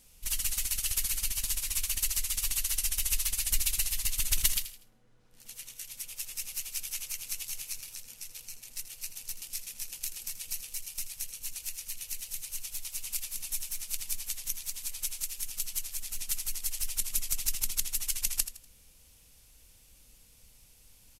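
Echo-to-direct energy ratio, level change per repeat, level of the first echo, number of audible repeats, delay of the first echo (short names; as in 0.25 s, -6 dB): -12.0 dB, -9.5 dB, -12.5 dB, 3, 81 ms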